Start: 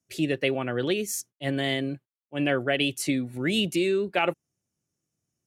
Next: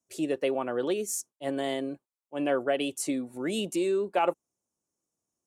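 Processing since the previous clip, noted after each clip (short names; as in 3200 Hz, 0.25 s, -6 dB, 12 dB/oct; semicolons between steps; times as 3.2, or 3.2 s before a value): graphic EQ 125/250/500/1000/2000/4000/8000 Hz -10/+3/+5/+10/-6/-3/+8 dB; gain -6.5 dB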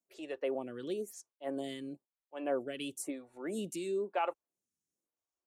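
photocell phaser 1 Hz; gain -5.5 dB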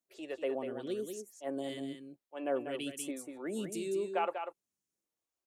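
echo 0.193 s -7 dB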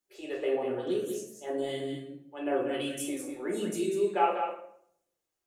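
reverb RT60 0.65 s, pre-delay 5 ms, DRR -2 dB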